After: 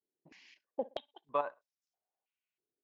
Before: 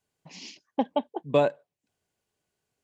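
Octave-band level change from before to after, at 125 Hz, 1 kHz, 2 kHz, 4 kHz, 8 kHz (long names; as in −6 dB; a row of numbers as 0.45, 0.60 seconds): −27.0 dB, −7.5 dB, −11.5 dB, −11.5 dB, can't be measured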